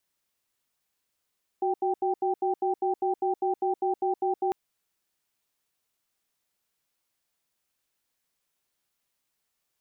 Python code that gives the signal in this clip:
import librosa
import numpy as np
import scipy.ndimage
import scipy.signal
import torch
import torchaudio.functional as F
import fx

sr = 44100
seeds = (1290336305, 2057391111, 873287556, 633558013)

y = fx.cadence(sr, length_s=2.9, low_hz=371.0, high_hz=783.0, on_s=0.12, off_s=0.08, level_db=-26.0)